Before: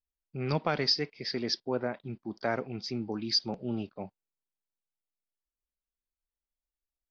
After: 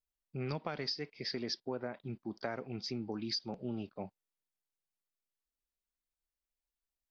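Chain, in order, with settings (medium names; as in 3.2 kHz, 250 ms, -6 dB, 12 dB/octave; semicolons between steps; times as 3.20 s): compression, threshold -32 dBFS, peak gain reduction 10.5 dB; trim -2 dB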